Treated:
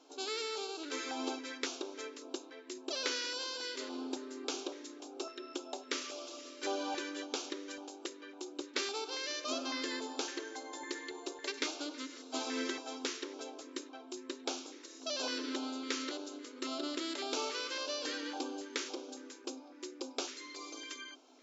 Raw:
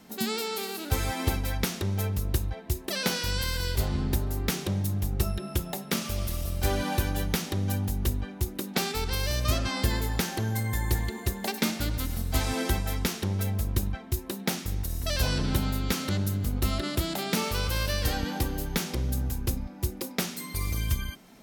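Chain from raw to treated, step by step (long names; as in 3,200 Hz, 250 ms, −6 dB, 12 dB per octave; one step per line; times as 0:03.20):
brick-wall band-pass 250–7,600 Hz
auto-filter notch square 1.8 Hz 750–1,900 Hz
level −5 dB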